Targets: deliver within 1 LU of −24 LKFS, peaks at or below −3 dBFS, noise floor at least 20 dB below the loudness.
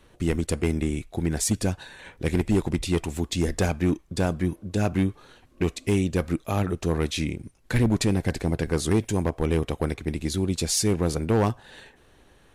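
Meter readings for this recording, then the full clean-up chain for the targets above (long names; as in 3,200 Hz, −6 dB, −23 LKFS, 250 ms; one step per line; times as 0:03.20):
share of clipped samples 1.4%; peaks flattened at −15.5 dBFS; integrated loudness −26.0 LKFS; sample peak −15.5 dBFS; target loudness −24.0 LKFS
→ clipped peaks rebuilt −15.5 dBFS
level +2 dB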